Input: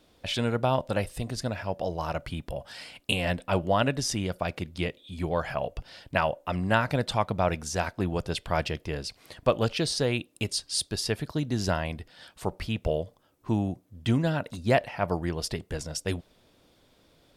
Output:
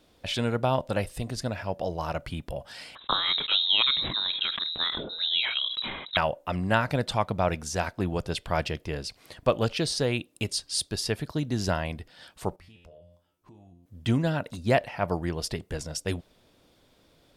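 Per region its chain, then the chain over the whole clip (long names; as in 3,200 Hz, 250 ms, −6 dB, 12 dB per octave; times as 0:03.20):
0:02.95–0:06.17: voice inversion scrambler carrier 3,900 Hz + level that may fall only so fast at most 48 dB per second
0:12.56–0:13.86: tuned comb filter 87 Hz, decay 0.34 s, mix 90% + downward compressor 5 to 1, threshold −50 dBFS
whole clip: no processing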